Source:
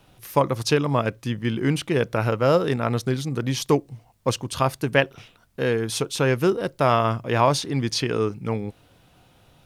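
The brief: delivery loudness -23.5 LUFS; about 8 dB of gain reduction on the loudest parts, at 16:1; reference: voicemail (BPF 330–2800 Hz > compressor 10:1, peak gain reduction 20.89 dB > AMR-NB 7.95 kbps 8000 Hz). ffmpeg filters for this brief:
-af "acompressor=threshold=-21dB:ratio=16,highpass=330,lowpass=2.8k,acompressor=threshold=-42dB:ratio=10,volume=24.5dB" -ar 8000 -c:a libopencore_amrnb -b:a 7950

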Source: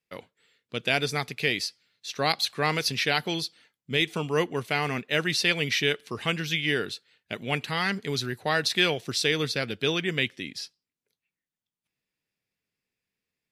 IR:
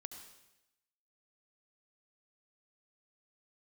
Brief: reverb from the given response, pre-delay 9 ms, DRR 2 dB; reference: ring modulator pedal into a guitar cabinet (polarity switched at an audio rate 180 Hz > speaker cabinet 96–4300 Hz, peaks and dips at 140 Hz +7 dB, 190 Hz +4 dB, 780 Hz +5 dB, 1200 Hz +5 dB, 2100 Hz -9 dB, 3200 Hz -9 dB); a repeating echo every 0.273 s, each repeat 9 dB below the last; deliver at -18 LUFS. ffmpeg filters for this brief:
-filter_complex "[0:a]aecho=1:1:273|546|819|1092:0.355|0.124|0.0435|0.0152,asplit=2[a][b];[1:a]atrim=start_sample=2205,adelay=9[c];[b][c]afir=irnorm=-1:irlink=0,volume=2.5dB[d];[a][d]amix=inputs=2:normalize=0,aeval=exprs='val(0)*sgn(sin(2*PI*180*n/s))':c=same,highpass=96,equalizer=f=140:t=q:w=4:g=7,equalizer=f=190:t=q:w=4:g=4,equalizer=f=780:t=q:w=4:g=5,equalizer=f=1.2k:t=q:w=4:g=5,equalizer=f=2.1k:t=q:w=4:g=-9,equalizer=f=3.2k:t=q:w=4:g=-9,lowpass=f=4.3k:w=0.5412,lowpass=f=4.3k:w=1.3066,volume=8dB"

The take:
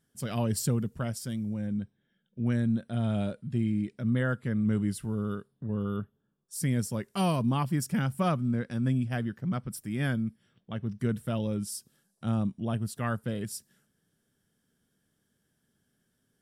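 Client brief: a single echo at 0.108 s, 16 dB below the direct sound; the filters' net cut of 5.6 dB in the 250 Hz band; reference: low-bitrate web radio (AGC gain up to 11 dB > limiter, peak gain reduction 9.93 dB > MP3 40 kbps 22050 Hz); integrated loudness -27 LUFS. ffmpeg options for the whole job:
-af "equalizer=f=250:t=o:g=-7,aecho=1:1:108:0.158,dynaudnorm=m=11dB,alimiter=limit=-22.5dB:level=0:latency=1,volume=7dB" -ar 22050 -c:a libmp3lame -b:a 40k

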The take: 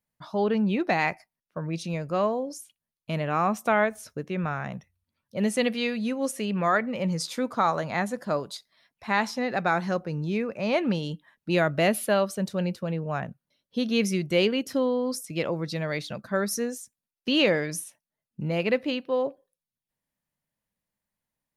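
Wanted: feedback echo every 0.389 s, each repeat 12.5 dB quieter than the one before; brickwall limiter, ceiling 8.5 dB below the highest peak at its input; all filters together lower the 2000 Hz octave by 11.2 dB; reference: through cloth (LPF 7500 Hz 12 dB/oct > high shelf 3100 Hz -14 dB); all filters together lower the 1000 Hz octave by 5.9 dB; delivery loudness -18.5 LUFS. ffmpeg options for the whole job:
-af "equalizer=f=1k:t=o:g=-4.5,equalizer=f=2k:t=o:g=-8,alimiter=limit=-21dB:level=0:latency=1,lowpass=7.5k,highshelf=f=3.1k:g=-14,aecho=1:1:389|778|1167:0.237|0.0569|0.0137,volume=13.5dB"

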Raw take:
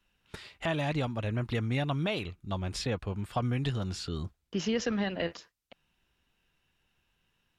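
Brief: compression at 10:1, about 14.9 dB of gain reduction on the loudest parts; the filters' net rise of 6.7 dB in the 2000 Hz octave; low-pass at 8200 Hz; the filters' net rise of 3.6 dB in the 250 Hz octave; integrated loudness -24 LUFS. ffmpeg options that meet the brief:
-af "lowpass=8.2k,equalizer=f=250:t=o:g=4.5,equalizer=f=2k:t=o:g=8,acompressor=threshold=-39dB:ratio=10,volume=19dB"

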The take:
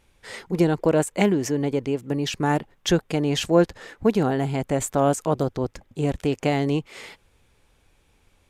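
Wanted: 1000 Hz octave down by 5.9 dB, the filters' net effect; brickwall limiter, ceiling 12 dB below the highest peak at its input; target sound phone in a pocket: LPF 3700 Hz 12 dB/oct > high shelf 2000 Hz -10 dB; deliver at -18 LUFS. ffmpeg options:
-af "equalizer=f=1k:t=o:g=-6.5,alimiter=limit=-18dB:level=0:latency=1,lowpass=3.7k,highshelf=f=2k:g=-10,volume=11.5dB"

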